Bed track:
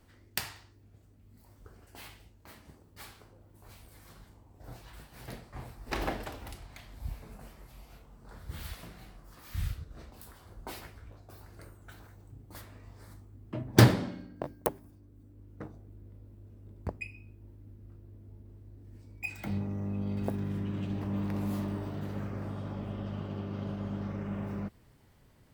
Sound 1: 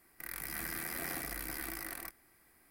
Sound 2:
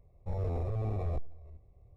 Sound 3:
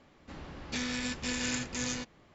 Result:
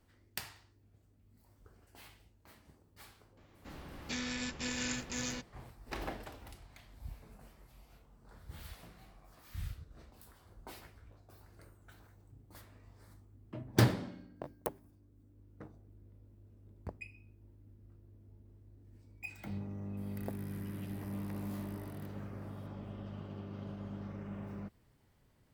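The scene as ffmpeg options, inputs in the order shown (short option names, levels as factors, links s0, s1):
-filter_complex "[0:a]volume=0.422[s0];[2:a]highpass=f=770:w=0.5412,highpass=f=770:w=1.3066[s1];[1:a]acompressor=threshold=0.00158:ratio=8:attack=45:release=787:knee=1:detection=rms[s2];[3:a]atrim=end=2.34,asetpts=PTS-STARTPTS,volume=0.631,afade=t=in:d=0.004:c=hsin,afade=t=out:st=2.336:d=0.004:c=hsin,adelay=148617S[s3];[s1]atrim=end=1.96,asetpts=PTS-STARTPTS,volume=0.133,afade=t=in:d=0.004:c=hsin,afade=t=out:st=1.956:d=0.004:c=hsin,adelay=8230[s4];[s2]atrim=end=2.7,asetpts=PTS-STARTPTS,volume=0.944,afade=t=in:d=0.004:c=hsin,afade=t=out:st=2.696:d=0.004:c=hsin,adelay=19970[s5];[s0][s3][s4][s5]amix=inputs=4:normalize=0"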